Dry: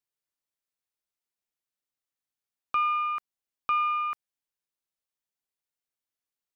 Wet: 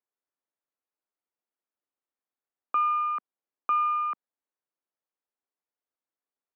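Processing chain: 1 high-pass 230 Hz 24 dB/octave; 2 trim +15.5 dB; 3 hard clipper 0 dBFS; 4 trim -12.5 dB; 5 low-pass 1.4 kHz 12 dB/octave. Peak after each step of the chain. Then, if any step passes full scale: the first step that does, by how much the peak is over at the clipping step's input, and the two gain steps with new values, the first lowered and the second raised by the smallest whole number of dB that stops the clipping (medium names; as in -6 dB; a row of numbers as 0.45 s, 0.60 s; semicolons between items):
-18.0 dBFS, -2.5 dBFS, -2.5 dBFS, -15.0 dBFS, -18.5 dBFS; nothing clips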